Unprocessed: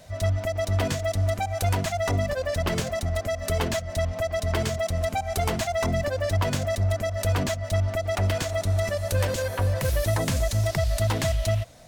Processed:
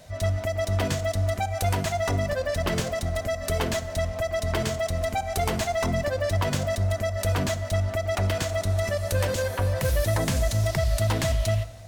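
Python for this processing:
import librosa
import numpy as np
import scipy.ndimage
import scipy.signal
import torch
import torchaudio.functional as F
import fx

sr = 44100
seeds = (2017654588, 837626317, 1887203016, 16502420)

y = fx.rev_plate(x, sr, seeds[0], rt60_s=1.3, hf_ratio=0.75, predelay_ms=0, drr_db=12.0)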